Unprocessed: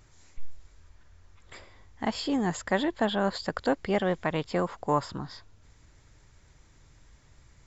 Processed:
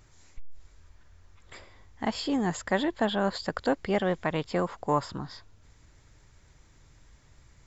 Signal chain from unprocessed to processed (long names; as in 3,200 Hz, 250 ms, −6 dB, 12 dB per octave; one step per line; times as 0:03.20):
saturating transformer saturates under 99 Hz